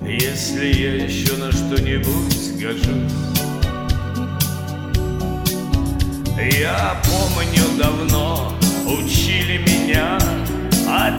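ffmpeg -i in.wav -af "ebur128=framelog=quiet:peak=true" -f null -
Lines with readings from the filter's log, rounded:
Integrated loudness:
  I:         -18.7 LUFS
  Threshold: -28.7 LUFS
Loudness range:
  LRA:         4.2 LU
  Threshold: -38.9 LUFS
  LRA low:   -21.3 LUFS
  LRA high:  -17.1 LUFS
True peak:
  Peak:       -2.9 dBFS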